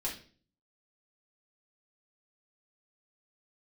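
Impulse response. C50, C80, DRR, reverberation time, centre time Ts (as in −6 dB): 8.0 dB, 13.5 dB, −5.5 dB, 0.40 s, 24 ms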